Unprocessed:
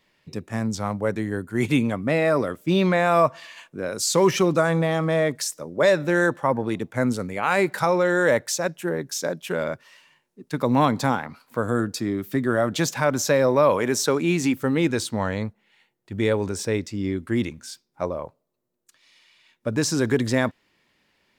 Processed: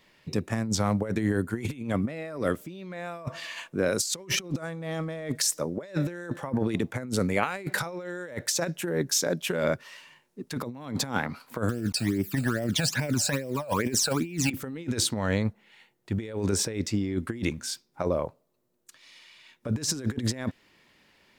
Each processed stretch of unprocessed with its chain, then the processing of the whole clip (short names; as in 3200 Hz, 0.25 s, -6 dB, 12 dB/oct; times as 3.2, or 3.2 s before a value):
11.69–14.51 block floating point 5-bit + phaser stages 12, 2.4 Hz, lowest notch 330–1300 Hz
whole clip: dynamic EQ 950 Hz, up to -5 dB, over -35 dBFS, Q 1.2; negative-ratio compressor -28 dBFS, ratio -0.5